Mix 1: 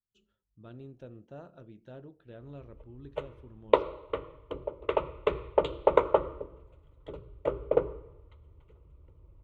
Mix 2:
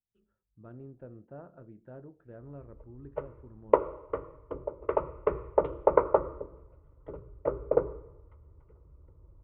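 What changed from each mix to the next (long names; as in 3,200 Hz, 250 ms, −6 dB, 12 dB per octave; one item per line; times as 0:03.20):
master: add low-pass filter 1,700 Hz 24 dB per octave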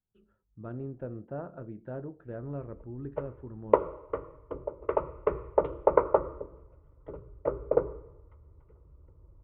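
speech +8.5 dB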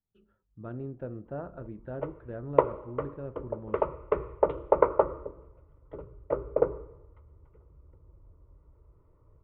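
background: entry −1.15 s
master: remove high-frequency loss of the air 170 metres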